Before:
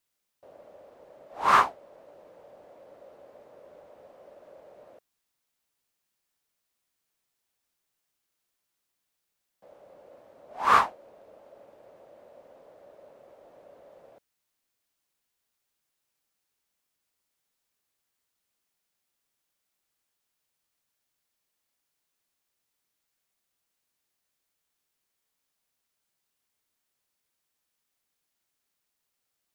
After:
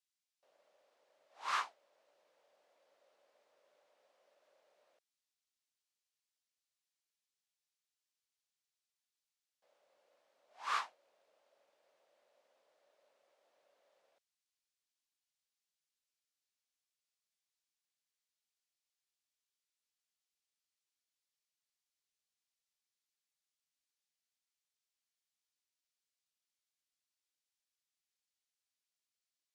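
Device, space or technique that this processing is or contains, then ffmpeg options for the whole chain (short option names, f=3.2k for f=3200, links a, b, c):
piezo pickup straight into a mixer: -af "lowpass=5.2k,aderivative,volume=-1.5dB"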